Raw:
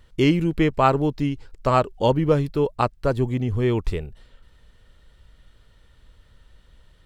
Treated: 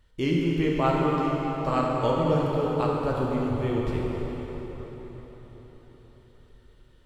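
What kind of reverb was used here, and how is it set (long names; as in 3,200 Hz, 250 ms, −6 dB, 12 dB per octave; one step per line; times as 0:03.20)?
dense smooth reverb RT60 4.9 s, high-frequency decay 0.75×, DRR −4 dB
level −9.5 dB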